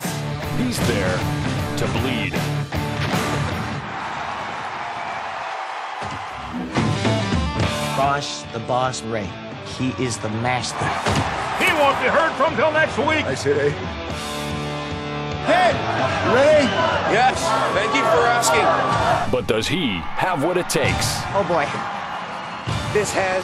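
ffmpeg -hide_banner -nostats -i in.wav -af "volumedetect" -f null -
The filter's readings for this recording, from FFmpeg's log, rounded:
mean_volume: -20.9 dB
max_volume: -5.0 dB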